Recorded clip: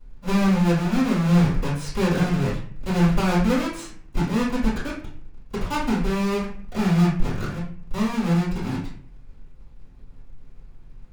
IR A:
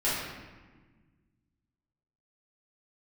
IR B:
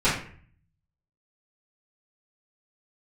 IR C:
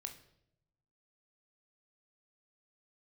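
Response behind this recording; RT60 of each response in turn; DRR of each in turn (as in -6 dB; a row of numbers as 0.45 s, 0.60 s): B; 1.4 s, 0.50 s, 0.75 s; -11.0 dB, -14.0 dB, 4.5 dB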